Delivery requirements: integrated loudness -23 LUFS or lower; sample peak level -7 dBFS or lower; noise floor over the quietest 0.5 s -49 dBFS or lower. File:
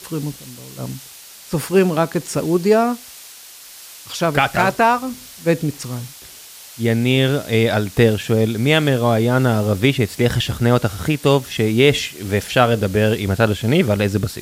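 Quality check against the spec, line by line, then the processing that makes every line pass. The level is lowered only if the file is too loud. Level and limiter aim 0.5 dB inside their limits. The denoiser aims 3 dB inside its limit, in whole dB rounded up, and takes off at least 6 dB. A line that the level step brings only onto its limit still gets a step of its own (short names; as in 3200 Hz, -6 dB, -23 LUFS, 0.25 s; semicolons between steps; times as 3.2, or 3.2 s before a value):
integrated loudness -17.5 LUFS: fail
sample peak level -2.0 dBFS: fail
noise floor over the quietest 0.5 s -40 dBFS: fail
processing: denoiser 6 dB, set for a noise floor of -40 dBFS; gain -6 dB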